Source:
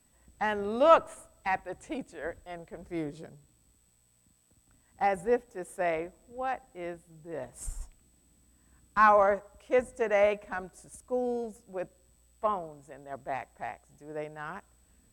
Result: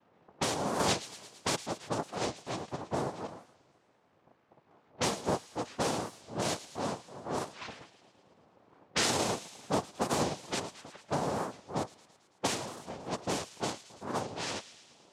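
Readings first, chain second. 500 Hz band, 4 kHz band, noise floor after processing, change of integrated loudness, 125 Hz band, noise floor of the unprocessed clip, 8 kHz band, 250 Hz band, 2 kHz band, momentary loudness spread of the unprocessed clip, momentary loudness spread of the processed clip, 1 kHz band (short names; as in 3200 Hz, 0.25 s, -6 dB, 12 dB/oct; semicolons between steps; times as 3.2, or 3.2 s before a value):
-7.0 dB, n/a, -68 dBFS, -4.5 dB, +8.0 dB, -67 dBFS, +13.0 dB, +2.0 dB, -5.0 dB, 20 LU, 12 LU, -6.0 dB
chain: noise vocoder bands 2; compressor 4:1, threshold -37 dBFS, peak gain reduction 19.5 dB; low-pass opened by the level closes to 1300 Hz, open at -35 dBFS; on a send: thin delay 0.11 s, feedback 66%, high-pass 2400 Hz, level -13 dB; on the sum: record warp 45 rpm, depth 250 cents; gain +7 dB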